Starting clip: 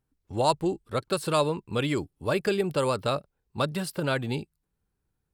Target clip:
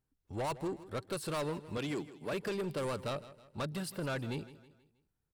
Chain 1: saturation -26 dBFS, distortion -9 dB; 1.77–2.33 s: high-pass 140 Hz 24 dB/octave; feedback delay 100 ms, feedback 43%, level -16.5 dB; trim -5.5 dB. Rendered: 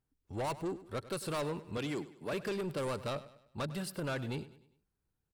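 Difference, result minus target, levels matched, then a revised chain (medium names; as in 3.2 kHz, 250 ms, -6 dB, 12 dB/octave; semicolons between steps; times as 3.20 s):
echo 60 ms early
saturation -26 dBFS, distortion -9 dB; 1.77–2.33 s: high-pass 140 Hz 24 dB/octave; feedback delay 160 ms, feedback 43%, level -16.5 dB; trim -5.5 dB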